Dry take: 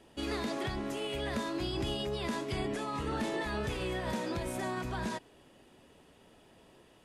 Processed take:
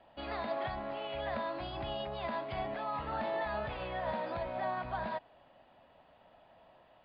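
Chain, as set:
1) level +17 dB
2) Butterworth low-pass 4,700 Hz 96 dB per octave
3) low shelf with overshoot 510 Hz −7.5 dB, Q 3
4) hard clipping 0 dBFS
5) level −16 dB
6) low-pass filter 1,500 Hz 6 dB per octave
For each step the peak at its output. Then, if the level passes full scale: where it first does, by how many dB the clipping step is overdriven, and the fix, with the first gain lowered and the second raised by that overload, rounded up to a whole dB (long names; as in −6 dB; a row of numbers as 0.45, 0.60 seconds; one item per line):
−7.5, −7.5, −5.5, −5.5, −21.5, −24.0 dBFS
no step passes full scale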